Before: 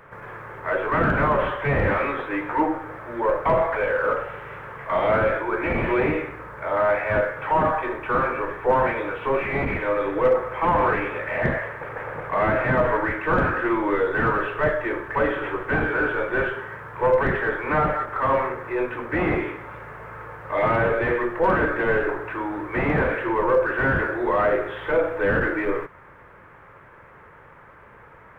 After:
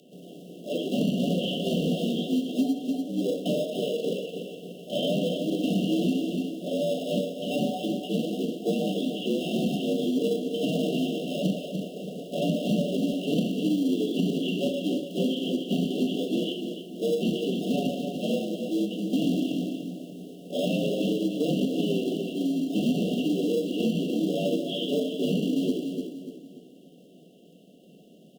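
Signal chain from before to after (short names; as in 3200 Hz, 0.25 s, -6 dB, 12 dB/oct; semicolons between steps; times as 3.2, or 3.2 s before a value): frequency shift -44 Hz; band shelf 780 Hz -14.5 dB 2.7 oct; in parallel at -9 dB: sample-and-hold 30×; on the sum: FFT band-reject 750–2700 Hz; on a send: feedback echo 0.292 s, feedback 41%, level -9 dB; on the sum: dynamic EQ 2200 Hz, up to +8 dB, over -56 dBFS, Q 0.87; elliptic high-pass 170 Hz, stop band 40 dB; compressor 3:1, threshold -30 dBFS, peak gain reduction 7 dB; gain +7.5 dB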